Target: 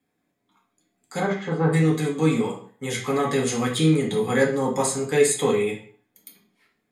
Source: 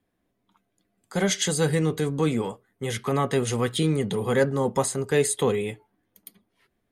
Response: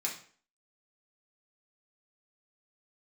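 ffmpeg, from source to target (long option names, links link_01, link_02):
-filter_complex "[0:a]asplit=3[link_01][link_02][link_03];[link_01]afade=type=out:start_time=1.19:duration=0.02[link_04];[link_02]lowpass=frequency=1100:width_type=q:width=2,afade=type=in:start_time=1.19:duration=0.02,afade=type=out:start_time=1.72:duration=0.02[link_05];[link_03]afade=type=in:start_time=1.72:duration=0.02[link_06];[link_04][link_05][link_06]amix=inputs=3:normalize=0[link_07];[1:a]atrim=start_sample=2205[link_08];[link_07][link_08]afir=irnorm=-1:irlink=0"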